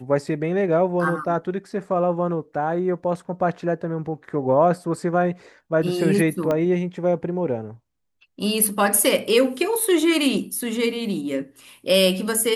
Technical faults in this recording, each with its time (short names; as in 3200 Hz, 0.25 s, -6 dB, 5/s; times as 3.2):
6.51 pop -12 dBFS